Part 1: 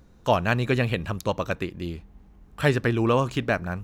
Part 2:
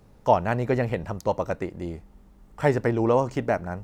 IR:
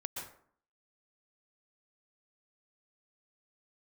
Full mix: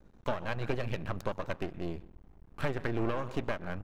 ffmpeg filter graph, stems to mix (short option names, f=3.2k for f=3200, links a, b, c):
-filter_complex "[0:a]volume=-1.5dB,asplit=2[a][b];[b]volume=-17.5dB[c];[1:a]highpass=440,adelay=4.1,volume=-15.5dB,asplit=2[d][e];[e]apad=whole_len=169136[f];[a][f]sidechaincompress=threshold=-44dB:ratio=5:attack=16:release=236[g];[2:a]atrim=start_sample=2205[h];[c][h]afir=irnorm=-1:irlink=0[i];[g][d][i]amix=inputs=3:normalize=0,aeval=exprs='max(val(0),0)':c=same,highshelf=f=3k:g=-10"